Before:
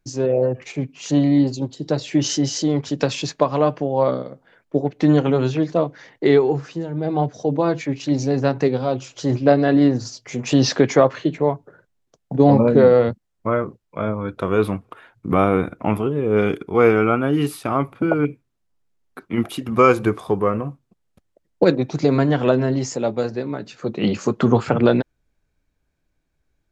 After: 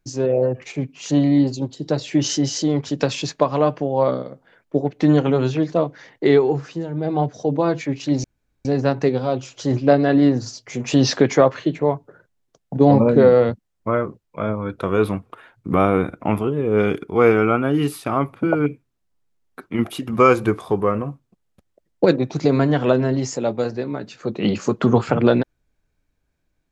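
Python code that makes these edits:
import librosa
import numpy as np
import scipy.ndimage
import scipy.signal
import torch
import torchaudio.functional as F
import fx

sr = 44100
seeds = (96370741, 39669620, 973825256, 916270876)

y = fx.edit(x, sr, fx.insert_room_tone(at_s=8.24, length_s=0.41), tone=tone)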